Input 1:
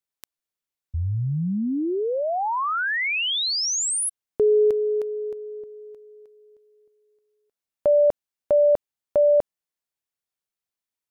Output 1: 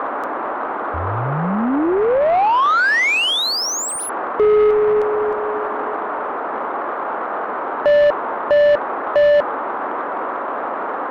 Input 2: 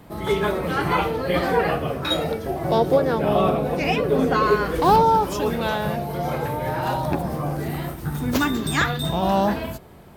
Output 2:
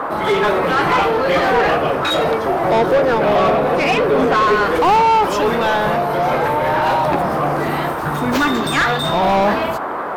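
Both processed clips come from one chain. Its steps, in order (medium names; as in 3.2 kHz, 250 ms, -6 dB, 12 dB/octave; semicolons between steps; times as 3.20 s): band noise 230–1300 Hz -36 dBFS; overdrive pedal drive 23 dB, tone 2.1 kHz, clips at -5 dBFS; trim -1 dB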